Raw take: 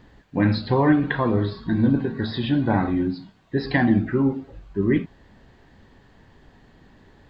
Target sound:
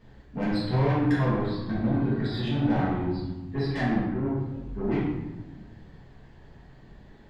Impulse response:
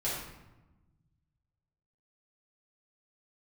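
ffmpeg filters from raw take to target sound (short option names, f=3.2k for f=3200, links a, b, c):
-filter_complex "[0:a]asettb=1/sr,asplit=3[a][b][c];[a]atrim=end=3.714[d];[b]atrim=start=3.71:end=4.37,asetpts=PTS-STARTPTS,afade=t=in:d=0.004:c=qsin,afade=t=out:st=0.656:d=0.004:c=qsin,agate=range=-12dB:threshold=-19dB:ratio=16:detection=peak[e];[c]atrim=start=4.366[f];[d][e]acrossfade=d=0.004:c1=hsin:c2=qsin[g];[g][f]acrossfade=d=0.004:c1=qsin:c2=hsin,asoftclip=type=tanh:threshold=-20.5dB[h];[1:a]atrim=start_sample=2205[i];[h][i]afir=irnorm=-1:irlink=0,volume=-7.5dB"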